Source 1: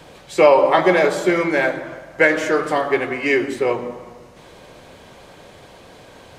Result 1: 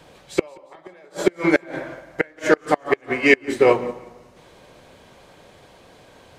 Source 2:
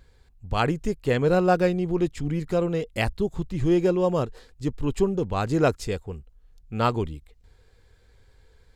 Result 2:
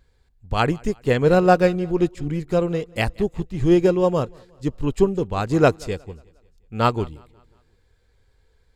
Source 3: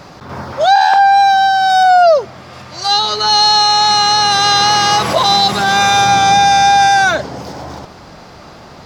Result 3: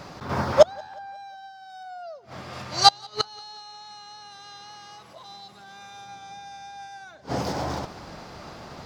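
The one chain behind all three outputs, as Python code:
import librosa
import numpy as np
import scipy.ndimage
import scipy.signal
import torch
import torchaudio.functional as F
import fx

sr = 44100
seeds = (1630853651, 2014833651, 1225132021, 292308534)

p1 = fx.gate_flip(x, sr, shuts_db=-7.0, range_db=-27)
p2 = p1 + fx.echo_feedback(p1, sr, ms=180, feedback_pct=50, wet_db=-19.5, dry=0)
p3 = fx.upward_expand(p2, sr, threshold_db=-38.0, expansion=1.5)
y = F.gain(torch.from_numpy(p3), 6.0).numpy()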